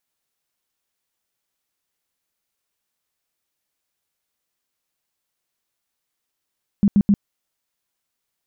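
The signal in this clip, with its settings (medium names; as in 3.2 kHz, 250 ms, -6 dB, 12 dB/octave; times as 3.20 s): tone bursts 202 Hz, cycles 10, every 0.13 s, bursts 3, -10.5 dBFS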